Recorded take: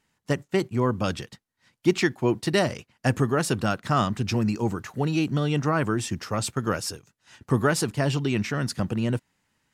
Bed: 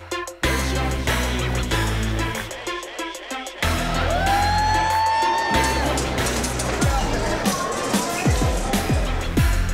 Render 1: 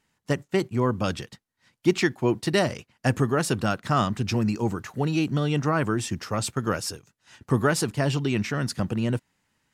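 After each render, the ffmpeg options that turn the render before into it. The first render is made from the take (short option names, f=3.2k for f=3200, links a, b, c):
-af anull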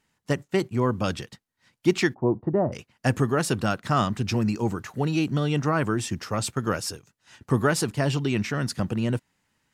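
-filter_complex "[0:a]asplit=3[a][b][c];[a]afade=t=out:st=2.13:d=0.02[d];[b]lowpass=f=1k:w=0.5412,lowpass=f=1k:w=1.3066,afade=t=in:st=2.13:d=0.02,afade=t=out:st=2.72:d=0.02[e];[c]afade=t=in:st=2.72:d=0.02[f];[d][e][f]amix=inputs=3:normalize=0"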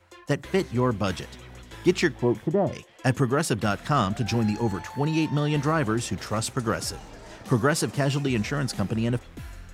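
-filter_complex "[1:a]volume=-21.5dB[a];[0:a][a]amix=inputs=2:normalize=0"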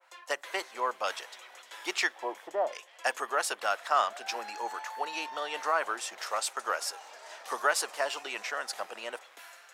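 -af "highpass=f=620:w=0.5412,highpass=f=620:w=1.3066,adynamicequalizer=threshold=0.00794:dfrequency=1800:dqfactor=0.7:tfrequency=1800:tqfactor=0.7:attack=5:release=100:ratio=0.375:range=2:mode=cutabove:tftype=highshelf"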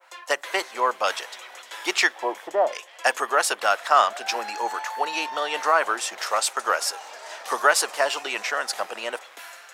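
-af "volume=8.5dB"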